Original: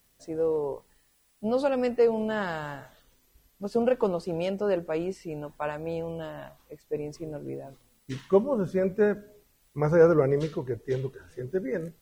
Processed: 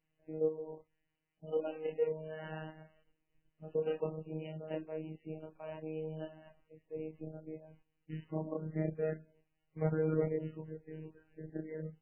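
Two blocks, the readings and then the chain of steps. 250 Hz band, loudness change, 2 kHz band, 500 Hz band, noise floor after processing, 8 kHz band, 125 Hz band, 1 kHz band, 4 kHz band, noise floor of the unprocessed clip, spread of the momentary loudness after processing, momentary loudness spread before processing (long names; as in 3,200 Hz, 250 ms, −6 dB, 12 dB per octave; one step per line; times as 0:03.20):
−11.0 dB, −12.0 dB, −15.5 dB, −12.0 dB, −83 dBFS, can't be measured, −7.0 dB, −16.5 dB, below −10 dB, −67 dBFS, 14 LU, 16 LU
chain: output level in coarse steps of 12 dB
multi-voice chorus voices 2, 0.29 Hz, delay 28 ms, depth 4 ms
phases set to zero 157 Hz
parametric band 1,200 Hz −9 dB 0.95 octaves
MP3 8 kbit/s 12,000 Hz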